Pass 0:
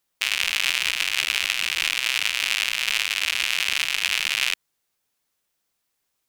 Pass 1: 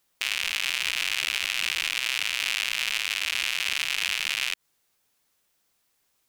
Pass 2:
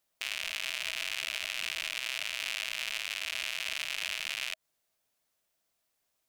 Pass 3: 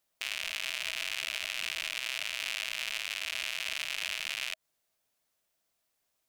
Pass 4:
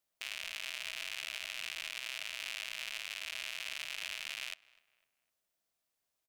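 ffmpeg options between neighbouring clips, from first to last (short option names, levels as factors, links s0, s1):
-af "alimiter=limit=0.211:level=0:latency=1:release=119,volume=1.68"
-af "equalizer=f=640:w=6.7:g=10.5,volume=0.398"
-af anull
-filter_complex "[0:a]asplit=2[s0][s1];[s1]adelay=252,lowpass=f=2500:p=1,volume=0.0841,asplit=2[s2][s3];[s3]adelay=252,lowpass=f=2500:p=1,volume=0.42,asplit=2[s4][s5];[s5]adelay=252,lowpass=f=2500:p=1,volume=0.42[s6];[s0][s2][s4][s6]amix=inputs=4:normalize=0,volume=0.501"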